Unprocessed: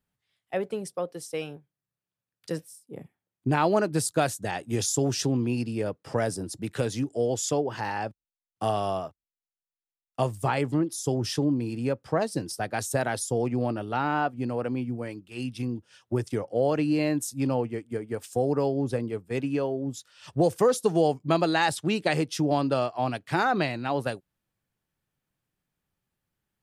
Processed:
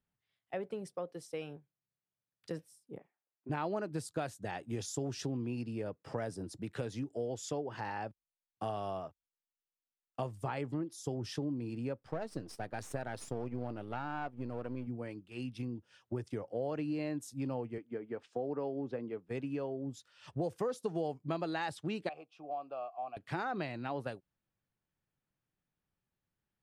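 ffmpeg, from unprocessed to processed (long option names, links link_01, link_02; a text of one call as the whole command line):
ffmpeg -i in.wav -filter_complex "[0:a]asplit=3[link_01][link_02][link_03];[link_01]afade=type=out:start_time=2.97:duration=0.02[link_04];[link_02]highpass=560,lowpass=2100,afade=type=in:start_time=2.97:duration=0.02,afade=type=out:start_time=3.49:duration=0.02[link_05];[link_03]afade=type=in:start_time=3.49:duration=0.02[link_06];[link_04][link_05][link_06]amix=inputs=3:normalize=0,asettb=1/sr,asplit=3[link_07][link_08][link_09];[link_07]atrim=end=12.004[link_10];[link_08]atrim=start=12:end=14.87,asetpts=PTS-STARTPTS,afade=type=in:duration=0.004:curve=qsin,afade=type=out:start_time=2.866:duration=0.004:curve=qsin,aeval=exprs='if(lt(val(0),0),0.447*val(0),val(0))':channel_layout=same[link_11];[link_09]atrim=start=14.866[link_12];[link_10][link_11]acrossfade=duration=0.004:curve1=hsin:curve2=qsin[link_13];[link_13][link_12]acrossfade=duration=0.004:curve1=qsin:curve2=hsin,asettb=1/sr,asplit=3[link_14][link_15][link_16];[link_14]atrim=end=17.784[link_17];[link_15]atrim=start=17.78:end=19.29,asetpts=PTS-STARTPTS,afade=type=in:duration=0.004:curve=qsin,afade=type=out:start_time=1.506:duration=0.004:curve=qsin,highpass=190,lowpass=3300[link_18];[link_16]atrim=start=19.286[link_19];[link_17][link_18]acrossfade=duration=0.004:curve1=hsin:curve2=qsin[link_20];[link_20][link_19]acrossfade=duration=0.004:curve1=qsin:curve2=hsin,asettb=1/sr,asplit=3[link_21][link_22][link_23];[link_21]atrim=end=22.094[link_24];[link_22]atrim=start=22.09:end=23.17,asetpts=PTS-STARTPTS,afade=type=in:duration=0.004:curve=qsin,afade=type=out:start_time=1.076:duration=0.004:curve=qsin,asplit=3[link_25][link_26][link_27];[link_25]bandpass=frequency=730:width_type=q:width=8,volume=0dB[link_28];[link_26]bandpass=frequency=1090:width_type=q:width=8,volume=-6dB[link_29];[link_27]bandpass=frequency=2440:width_type=q:width=8,volume=-9dB[link_30];[link_28][link_29][link_30]amix=inputs=3:normalize=0[link_31];[link_23]atrim=start=23.166[link_32];[link_24][link_31]acrossfade=duration=0.004:curve1=hsin:curve2=qsin[link_33];[link_33][link_32]acrossfade=duration=0.004:curve1=qsin:curve2=hsin,highshelf=frequency=5600:gain=-11.5,acompressor=threshold=-32dB:ratio=2,volume=-5.5dB" out.wav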